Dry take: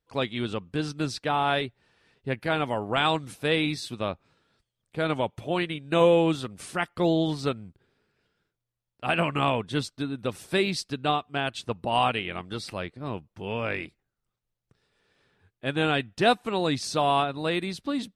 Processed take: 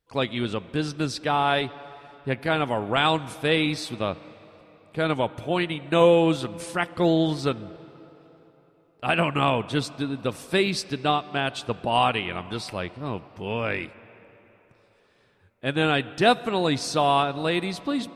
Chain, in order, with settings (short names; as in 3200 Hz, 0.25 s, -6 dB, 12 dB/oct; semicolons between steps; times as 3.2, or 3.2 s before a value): on a send: air absorption 59 m + reverb RT60 4.0 s, pre-delay 29 ms, DRR 17.5 dB; on the sum: gain +2.5 dB